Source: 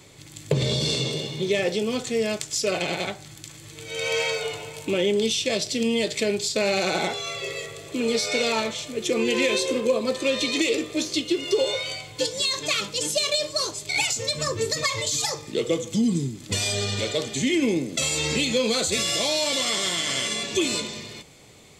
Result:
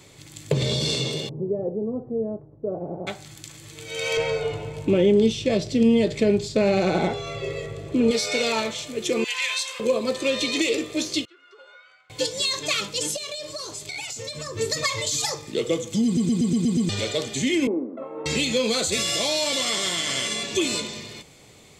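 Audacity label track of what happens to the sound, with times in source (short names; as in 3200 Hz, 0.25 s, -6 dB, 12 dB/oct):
1.290000	3.070000	Bessel low-pass 520 Hz, order 6
4.170000	8.110000	tilt -3.5 dB/oct
9.240000	9.800000	inverse Chebyshev high-pass stop band from 210 Hz, stop band 70 dB
11.250000	12.100000	band-pass 1400 Hz, Q 12
13.160000	14.570000	compressor, threshold -30 dBFS
16.050000	16.050000	stutter in place 0.12 s, 7 plays
17.670000	18.260000	elliptic band-pass 240–1200 Hz, stop band 60 dB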